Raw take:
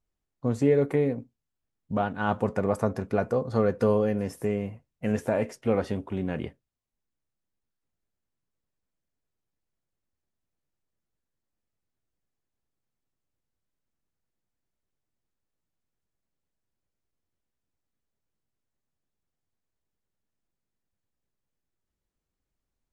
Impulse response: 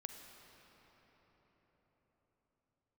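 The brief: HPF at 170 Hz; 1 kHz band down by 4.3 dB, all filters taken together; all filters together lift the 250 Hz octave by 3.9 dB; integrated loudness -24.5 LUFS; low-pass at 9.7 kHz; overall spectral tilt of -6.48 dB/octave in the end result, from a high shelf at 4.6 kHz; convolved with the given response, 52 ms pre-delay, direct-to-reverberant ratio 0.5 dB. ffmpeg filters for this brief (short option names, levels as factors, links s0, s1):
-filter_complex "[0:a]highpass=170,lowpass=9700,equalizer=f=250:t=o:g=6.5,equalizer=f=1000:t=o:g=-6.5,highshelf=f=4600:g=-8,asplit=2[s0][s1];[1:a]atrim=start_sample=2205,adelay=52[s2];[s1][s2]afir=irnorm=-1:irlink=0,volume=1.41[s3];[s0][s3]amix=inputs=2:normalize=0,volume=0.891"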